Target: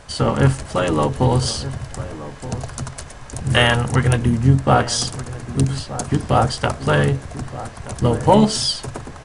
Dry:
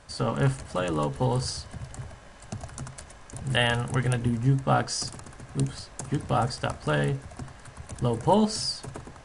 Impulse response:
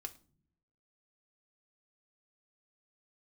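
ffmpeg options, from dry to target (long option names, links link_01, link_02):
-filter_complex "[0:a]acontrast=71,asplit=3[link_01][link_02][link_03];[link_02]asetrate=29433,aresample=44100,atempo=1.49831,volume=-9dB[link_04];[link_03]asetrate=37084,aresample=44100,atempo=1.18921,volume=-15dB[link_05];[link_01][link_04][link_05]amix=inputs=3:normalize=0,asplit=2[link_06][link_07];[link_07]adelay=1224,volume=-14dB,highshelf=frequency=4000:gain=-27.6[link_08];[link_06][link_08]amix=inputs=2:normalize=0,volume=2dB"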